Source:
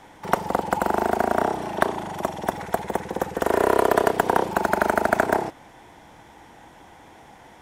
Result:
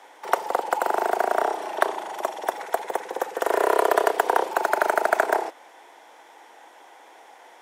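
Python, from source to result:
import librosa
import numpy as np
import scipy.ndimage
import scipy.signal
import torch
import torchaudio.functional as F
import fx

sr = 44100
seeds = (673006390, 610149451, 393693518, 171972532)

y = scipy.signal.sosfilt(scipy.signal.butter(4, 400.0, 'highpass', fs=sr, output='sos'), x)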